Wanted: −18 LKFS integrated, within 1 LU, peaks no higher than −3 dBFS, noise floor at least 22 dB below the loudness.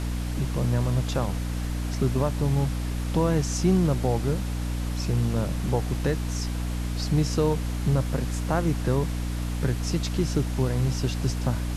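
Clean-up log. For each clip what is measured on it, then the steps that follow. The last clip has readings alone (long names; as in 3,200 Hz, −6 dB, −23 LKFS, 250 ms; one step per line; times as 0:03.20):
mains hum 60 Hz; hum harmonics up to 300 Hz; level of the hum −26 dBFS; background noise floor −29 dBFS; target noise floor −49 dBFS; integrated loudness −26.5 LKFS; sample peak −10.5 dBFS; target loudness −18.0 LKFS
→ mains-hum notches 60/120/180/240/300 Hz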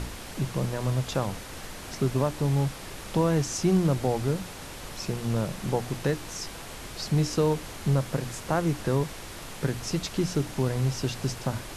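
mains hum none found; background noise floor −41 dBFS; target noise floor −51 dBFS
→ noise reduction from a noise print 10 dB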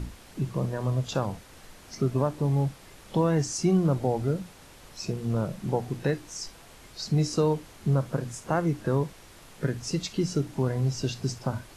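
background noise floor −51 dBFS; integrated loudness −28.5 LKFS; sample peak −12.0 dBFS; target loudness −18.0 LKFS
→ level +10.5 dB
brickwall limiter −3 dBFS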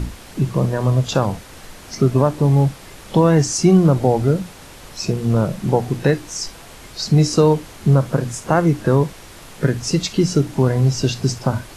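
integrated loudness −18.0 LKFS; sample peak −3.0 dBFS; background noise floor −40 dBFS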